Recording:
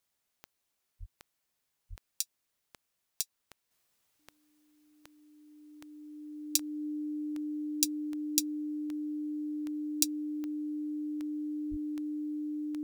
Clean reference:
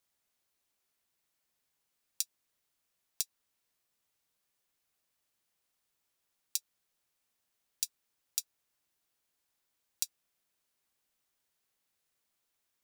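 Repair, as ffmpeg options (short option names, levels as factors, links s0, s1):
-filter_complex "[0:a]adeclick=t=4,bandreject=f=300:w=30,asplit=3[s0][s1][s2];[s0]afade=t=out:st=0.99:d=0.02[s3];[s1]highpass=f=140:w=0.5412,highpass=f=140:w=1.3066,afade=t=in:st=0.99:d=0.02,afade=t=out:st=1.11:d=0.02[s4];[s2]afade=t=in:st=1.11:d=0.02[s5];[s3][s4][s5]amix=inputs=3:normalize=0,asplit=3[s6][s7][s8];[s6]afade=t=out:st=1.89:d=0.02[s9];[s7]highpass=f=140:w=0.5412,highpass=f=140:w=1.3066,afade=t=in:st=1.89:d=0.02,afade=t=out:st=2.01:d=0.02[s10];[s8]afade=t=in:st=2.01:d=0.02[s11];[s9][s10][s11]amix=inputs=3:normalize=0,asplit=3[s12][s13][s14];[s12]afade=t=out:st=11.7:d=0.02[s15];[s13]highpass=f=140:w=0.5412,highpass=f=140:w=1.3066,afade=t=in:st=11.7:d=0.02,afade=t=out:st=11.82:d=0.02[s16];[s14]afade=t=in:st=11.82:d=0.02[s17];[s15][s16][s17]amix=inputs=3:normalize=0,asetnsamples=n=441:p=0,asendcmd='3.71 volume volume -6dB',volume=1"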